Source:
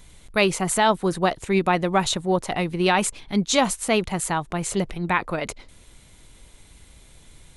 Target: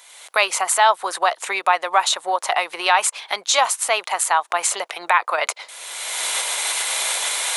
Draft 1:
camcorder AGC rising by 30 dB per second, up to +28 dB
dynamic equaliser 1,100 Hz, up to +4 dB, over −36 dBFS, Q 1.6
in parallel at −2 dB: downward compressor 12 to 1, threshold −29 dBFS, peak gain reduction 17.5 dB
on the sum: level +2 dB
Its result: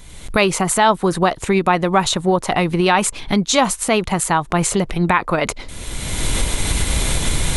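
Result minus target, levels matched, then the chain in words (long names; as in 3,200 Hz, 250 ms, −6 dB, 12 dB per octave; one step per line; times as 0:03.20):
500 Hz band +5.0 dB
camcorder AGC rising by 30 dB per second, up to +28 dB
dynamic equaliser 1,100 Hz, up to +4 dB, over −36 dBFS, Q 1.6
high-pass filter 650 Hz 24 dB per octave
in parallel at −2 dB: downward compressor 12 to 1, threshold −29 dBFS, peak gain reduction 17 dB
on the sum: level +2 dB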